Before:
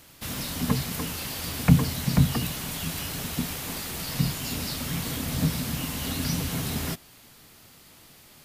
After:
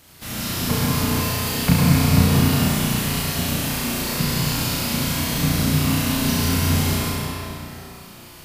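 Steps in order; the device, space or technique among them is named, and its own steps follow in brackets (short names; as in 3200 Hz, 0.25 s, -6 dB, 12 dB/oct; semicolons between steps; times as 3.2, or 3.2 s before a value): tunnel (flutter echo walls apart 5.8 m, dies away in 1 s; reverb RT60 3.0 s, pre-delay 0.109 s, DRR -4 dB)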